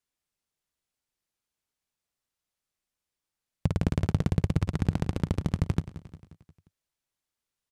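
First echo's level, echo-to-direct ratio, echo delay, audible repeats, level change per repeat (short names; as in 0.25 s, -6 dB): -15.0 dB, -13.5 dB, 0.177 s, 4, -5.5 dB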